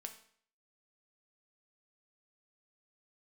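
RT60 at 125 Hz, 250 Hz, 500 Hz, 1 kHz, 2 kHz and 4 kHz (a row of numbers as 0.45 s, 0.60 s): 0.55 s, 0.55 s, 0.55 s, 0.55 s, 0.55 s, 0.50 s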